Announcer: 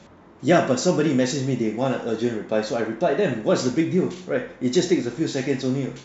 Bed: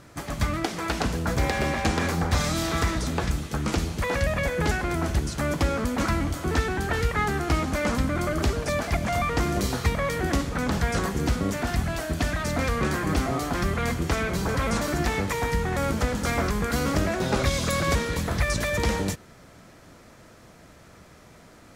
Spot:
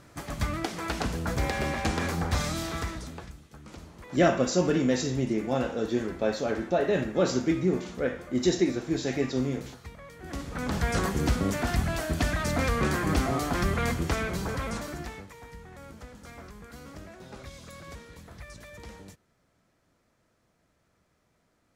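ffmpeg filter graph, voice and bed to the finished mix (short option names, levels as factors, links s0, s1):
-filter_complex "[0:a]adelay=3700,volume=0.596[s0];[1:a]volume=5.96,afade=t=out:st=2.38:d=0.96:silence=0.149624,afade=t=in:st=10.19:d=0.81:silence=0.105925,afade=t=out:st=13.8:d=1.49:silence=0.105925[s1];[s0][s1]amix=inputs=2:normalize=0"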